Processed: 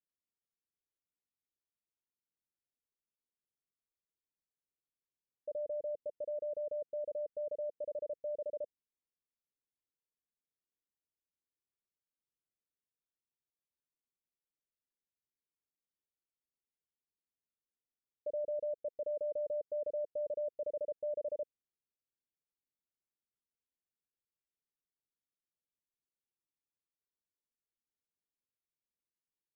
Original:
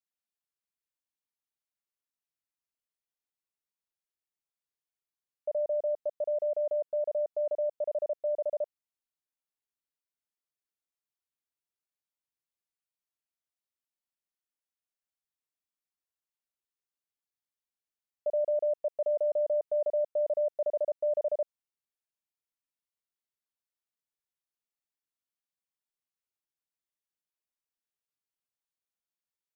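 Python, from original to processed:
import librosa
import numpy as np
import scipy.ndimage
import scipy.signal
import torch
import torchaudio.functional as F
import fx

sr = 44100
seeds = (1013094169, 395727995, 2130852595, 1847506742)

y = scipy.signal.sosfilt(scipy.signal.butter(8, 530.0, 'lowpass', fs=sr, output='sos'), x)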